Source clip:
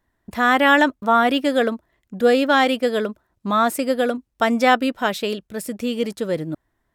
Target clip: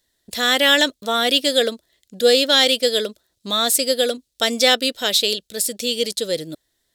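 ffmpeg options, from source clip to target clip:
-af "equalizer=f=500:t=o:w=1:g=10,equalizer=f=1000:t=o:w=1:g=-6,equalizer=f=2000:t=o:w=1:g=8,equalizer=f=4000:t=o:w=1:g=10,equalizer=f=8000:t=o:w=1:g=4,aexciter=amount=4.8:drive=6.3:freq=3200,volume=0.398"

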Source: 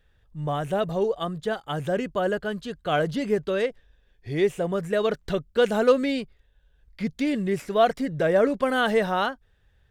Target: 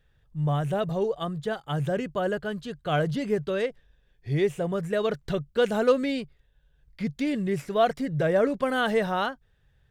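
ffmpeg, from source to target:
-af "equalizer=f=140:t=o:w=0.36:g=10,volume=0.75"

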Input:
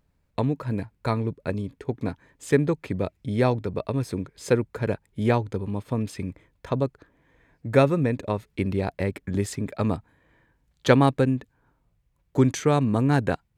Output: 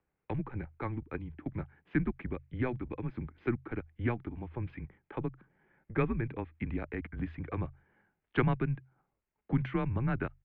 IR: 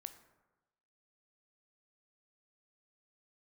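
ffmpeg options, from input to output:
-filter_complex "[0:a]atempo=1.3,acrossover=split=460|1100[s0][s1][s2];[s1]acompressor=threshold=0.00794:ratio=6[s3];[s0][s3][s2]amix=inputs=3:normalize=0,bandreject=f=50:t=h:w=6,bandreject=f=100:t=h:w=6,bandreject=f=150:t=h:w=6,bandreject=f=200:t=h:w=6,bandreject=f=250:t=h:w=6,highpass=f=190:t=q:w=0.5412,highpass=f=190:t=q:w=1.307,lowpass=f=2800:t=q:w=0.5176,lowpass=f=2800:t=q:w=0.7071,lowpass=f=2800:t=q:w=1.932,afreqshift=-120,volume=0.531"

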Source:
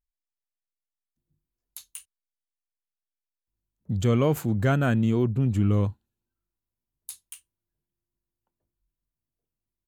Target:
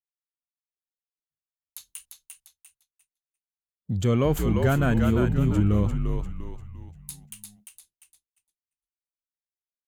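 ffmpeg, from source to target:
-filter_complex "[0:a]acontrast=41,asplit=2[s0][s1];[s1]asplit=5[s2][s3][s4][s5][s6];[s2]adelay=347,afreqshift=-62,volume=0.596[s7];[s3]adelay=694,afreqshift=-124,volume=0.257[s8];[s4]adelay=1041,afreqshift=-186,volume=0.11[s9];[s5]adelay=1388,afreqshift=-248,volume=0.0473[s10];[s6]adelay=1735,afreqshift=-310,volume=0.0204[s11];[s7][s8][s9][s10][s11]amix=inputs=5:normalize=0[s12];[s0][s12]amix=inputs=2:normalize=0,agate=range=0.0224:threshold=0.00398:ratio=3:detection=peak,volume=0.531"

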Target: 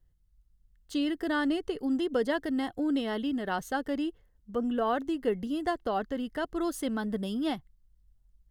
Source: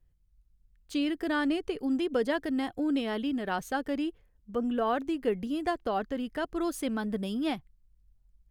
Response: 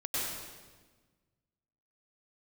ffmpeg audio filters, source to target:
-af "asuperstop=centerf=2400:order=4:qfactor=6.3"

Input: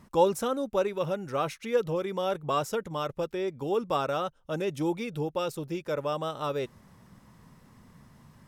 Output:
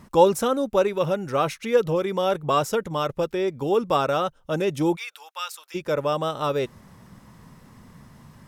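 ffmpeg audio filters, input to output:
-filter_complex "[0:a]asplit=3[s0][s1][s2];[s0]afade=t=out:st=4.95:d=0.02[s3];[s1]highpass=f=1100:w=0.5412,highpass=f=1100:w=1.3066,afade=t=in:st=4.95:d=0.02,afade=t=out:st=5.74:d=0.02[s4];[s2]afade=t=in:st=5.74:d=0.02[s5];[s3][s4][s5]amix=inputs=3:normalize=0,volume=2.11"

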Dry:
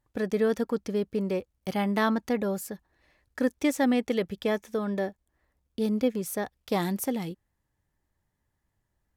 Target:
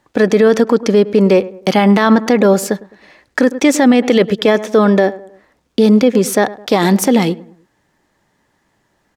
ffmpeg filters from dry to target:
-filter_complex "[0:a]acrossover=split=170 7700:gain=0.112 1 0.224[s0][s1][s2];[s0][s1][s2]amix=inputs=3:normalize=0,asplit=2[s3][s4];[s4]adelay=105,lowpass=f=1400:p=1,volume=0.1,asplit=2[s5][s6];[s6]adelay=105,lowpass=f=1400:p=1,volume=0.43,asplit=2[s7][s8];[s8]adelay=105,lowpass=f=1400:p=1,volume=0.43[s9];[s5][s7][s9]amix=inputs=3:normalize=0[s10];[s3][s10]amix=inputs=2:normalize=0,alimiter=level_in=14.1:limit=0.891:release=50:level=0:latency=1,volume=0.891"

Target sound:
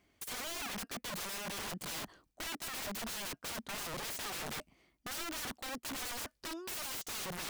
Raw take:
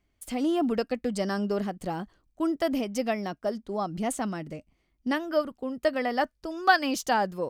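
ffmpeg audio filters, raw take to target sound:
-af "highpass=f=210:p=1,areverse,acompressor=threshold=0.02:ratio=10,areverse,aeval=exprs='(mod(133*val(0)+1,2)-1)/133':c=same,volume=2.11"

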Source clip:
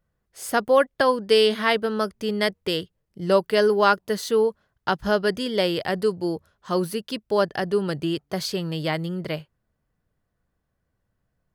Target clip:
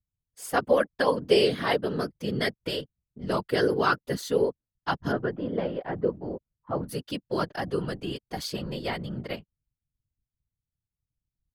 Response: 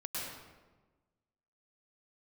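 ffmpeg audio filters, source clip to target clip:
-filter_complex "[0:a]asplit=3[s0][s1][s2];[s0]afade=t=out:st=5.11:d=0.02[s3];[s1]lowpass=1300,afade=t=in:st=5.11:d=0.02,afade=t=out:st=6.88:d=0.02[s4];[s2]afade=t=in:st=6.88:d=0.02[s5];[s3][s4][s5]amix=inputs=3:normalize=0,anlmdn=0.158,aecho=1:1:4.2:0.48,afftfilt=real='hypot(re,im)*cos(2*PI*random(0))':imag='hypot(re,im)*sin(2*PI*random(1))':win_size=512:overlap=0.75"

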